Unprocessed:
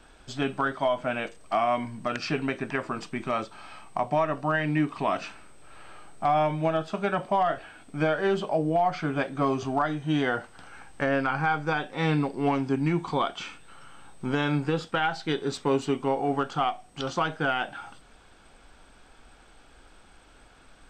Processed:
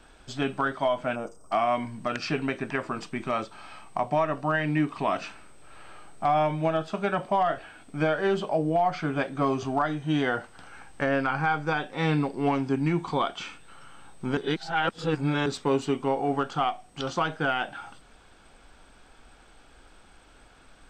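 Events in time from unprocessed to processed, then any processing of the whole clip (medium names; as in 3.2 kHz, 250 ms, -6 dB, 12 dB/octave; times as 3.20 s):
1.16–1.52 s: time-frequency box 1.5–4.8 kHz -20 dB
14.37–15.46 s: reverse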